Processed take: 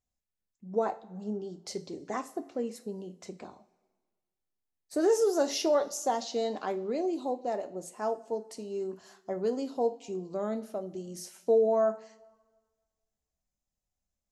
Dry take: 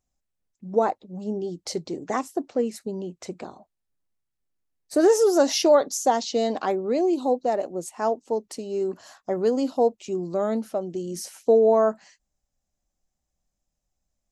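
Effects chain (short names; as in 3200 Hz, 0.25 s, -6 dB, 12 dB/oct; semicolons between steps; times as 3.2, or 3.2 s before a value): two-slope reverb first 0.3 s, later 1.5 s, from -18 dB, DRR 7 dB; gain -8.5 dB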